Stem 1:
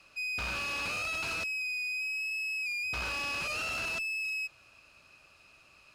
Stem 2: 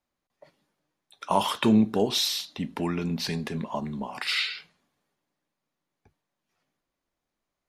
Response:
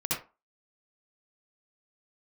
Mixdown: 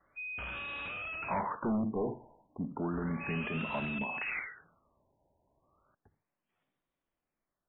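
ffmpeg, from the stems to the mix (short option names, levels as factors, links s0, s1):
-filter_complex "[0:a]volume=0.531[s0];[1:a]volume=0.562,asplit=2[s1][s2];[s2]volume=0.0891[s3];[2:a]atrim=start_sample=2205[s4];[s3][s4]afir=irnorm=-1:irlink=0[s5];[s0][s1][s5]amix=inputs=3:normalize=0,asoftclip=type=hard:threshold=0.0376,afftfilt=real='re*lt(b*sr/1024,990*pow(3900/990,0.5+0.5*sin(2*PI*0.33*pts/sr)))':imag='im*lt(b*sr/1024,990*pow(3900/990,0.5+0.5*sin(2*PI*0.33*pts/sr)))':win_size=1024:overlap=0.75"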